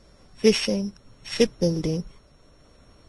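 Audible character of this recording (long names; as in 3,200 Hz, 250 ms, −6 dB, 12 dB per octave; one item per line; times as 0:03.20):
a buzz of ramps at a fixed pitch in blocks of 8 samples
tremolo triangle 0.76 Hz, depth 35%
a quantiser's noise floor 12 bits, dither none
Ogg Vorbis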